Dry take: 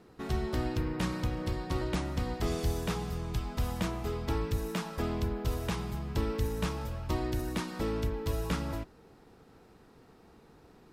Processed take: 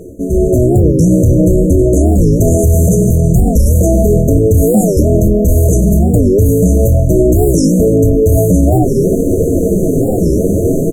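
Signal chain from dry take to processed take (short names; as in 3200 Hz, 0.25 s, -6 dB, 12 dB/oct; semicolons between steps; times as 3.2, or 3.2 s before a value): early reflections 11 ms -4.5 dB, 26 ms -9.5 dB; in parallel at -11.5 dB: wavefolder -27 dBFS; on the sum: flange 0.53 Hz, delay 1.9 ms, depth 9.5 ms, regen -21%; reverse; compressor 4:1, threshold -48 dBFS, peak gain reduction 18 dB; reverse; brick-wall FIR band-stop 690–6000 Hz; AGC gain up to 16 dB; maximiser +32 dB; record warp 45 rpm, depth 250 cents; gain -1 dB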